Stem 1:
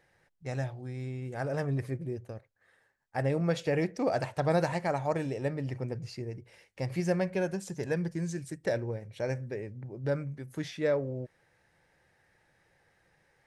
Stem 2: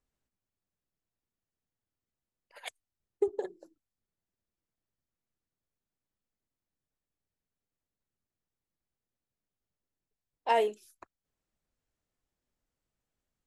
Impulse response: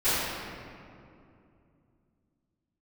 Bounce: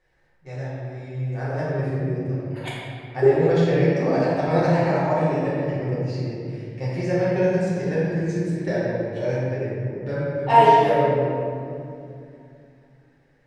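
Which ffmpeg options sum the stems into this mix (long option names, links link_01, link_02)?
-filter_complex "[0:a]lowpass=6100,bandreject=frequency=93.33:width_type=h:width=4,bandreject=frequency=186.66:width_type=h:width=4,bandreject=frequency=279.99:width_type=h:width=4,bandreject=frequency=373.32:width_type=h:width=4,bandreject=frequency=466.65:width_type=h:width=4,bandreject=frequency=559.98:width_type=h:width=4,bandreject=frequency=653.31:width_type=h:width=4,bandreject=frequency=746.64:width_type=h:width=4,bandreject=frequency=839.97:width_type=h:width=4,bandreject=frequency=933.3:width_type=h:width=4,bandreject=frequency=1026.63:width_type=h:width=4,bandreject=frequency=1119.96:width_type=h:width=4,bandreject=frequency=1213.29:width_type=h:width=4,bandreject=frequency=1306.62:width_type=h:width=4,bandreject=frequency=1399.95:width_type=h:width=4,bandreject=frequency=1493.28:width_type=h:width=4,bandreject=frequency=1586.61:width_type=h:width=4,bandreject=frequency=1679.94:width_type=h:width=4,bandreject=frequency=1773.27:width_type=h:width=4,bandreject=frequency=1866.6:width_type=h:width=4,bandreject=frequency=1959.93:width_type=h:width=4,bandreject=frequency=2053.26:width_type=h:width=4,bandreject=frequency=2146.59:width_type=h:width=4,bandreject=frequency=2239.92:width_type=h:width=4,bandreject=frequency=2333.25:width_type=h:width=4,bandreject=frequency=2426.58:width_type=h:width=4,bandreject=frequency=2519.91:width_type=h:width=4,bandreject=frequency=2613.24:width_type=h:width=4,bandreject=frequency=2706.57:width_type=h:width=4,bandreject=frequency=2799.9:width_type=h:width=4,bandreject=frequency=2893.23:width_type=h:width=4,bandreject=frequency=2986.56:width_type=h:width=4,bandreject=frequency=3079.89:width_type=h:width=4,bandreject=frequency=3173.22:width_type=h:width=4,bandreject=frequency=3266.55:width_type=h:width=4,bandreject=frequency=3359.88:width_type=h:width=4,bandreject=frequency=3453.21:width_type=h:width=4,bandreject=frequency=3546.54:width_type=h:width=4,dynaudnorm=framelen=120:gausssize=21:maxgain=5dB,volume=-9.5dB,asplit=3[link_01][link_02][link_03];[link_02]volume=-3dB[link_04];[1:a]highshelf=frequency=9300:gain=-12,volume=1.5dB,asplit=2[link_05][link_06];[link_06]volume=-4dB[link_07];[link_03]apad=whole_len=593982[link_08];[link_05][link_08]sidechaincompress=threshold=-53dB:ratio=8:attack=16:release=221[link_09];[2:a]atrim=start_sample=2205[link_10];[link_04][link_07]amix=inputs=2:normalize=0[link_11];[link_11][link_10]afir=irnorm=-1:irlink=0[link_12];[link_01][link_09][link_12]amix=inputs=3:normalize=0"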